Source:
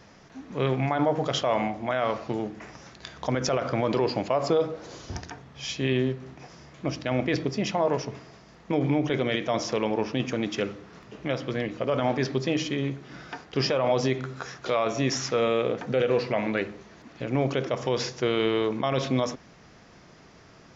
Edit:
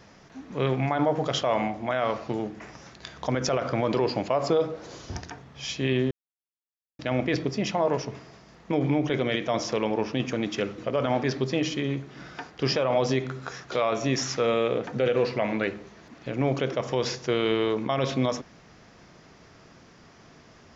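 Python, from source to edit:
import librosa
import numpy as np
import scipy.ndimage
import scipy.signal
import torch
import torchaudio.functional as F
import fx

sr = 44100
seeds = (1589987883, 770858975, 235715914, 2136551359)

y = fx.edit(x, sr, fx.silence(start_s=6.11, length_s=0.88),
    fx.cut(start_s=10.78, length_s=0.94), tone=tone)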